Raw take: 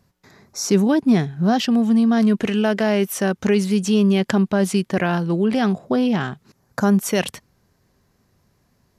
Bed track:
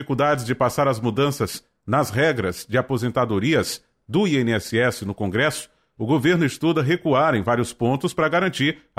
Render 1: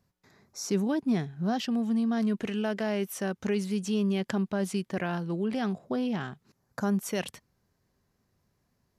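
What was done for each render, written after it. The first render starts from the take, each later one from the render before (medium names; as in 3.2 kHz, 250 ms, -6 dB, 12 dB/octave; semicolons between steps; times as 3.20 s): trim -11 dB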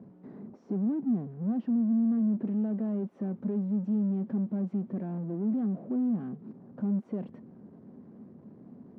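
power-law waveshaper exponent 0.35; ladder band-pass 260 Hz, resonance 50%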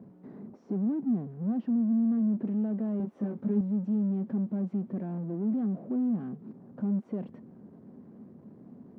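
2.98–3.61 s: doubling 19 ms -2 dB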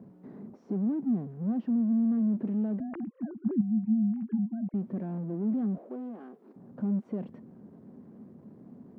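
2.80–4.74 s: formants replaced by sine waves; 5.78–6.56 s: high-pass 340 Hz 24 dB/octave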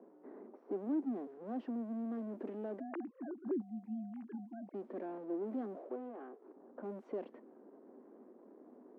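level-controlled noise filter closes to 1.3 kHz, open at -25.5 dBFS; steep high-pass 300 Hz 36 dB/octave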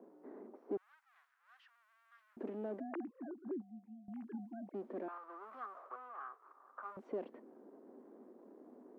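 0.77–2.37 s: steep high-pass 1.3 kHz; 2.94–4.08 s: fade out, to -17.5 dB; 5.08–6.97 s: resonant high-pass 1.2 kHz, resonance Q 9.3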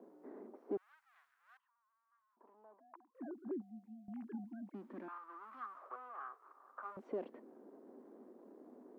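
1.57–3.15 s: band-pass filter 1 kHz, Q 8.8; 4.44–5.82 s: high-order bell 530 Hz -11 dB 1.2 oct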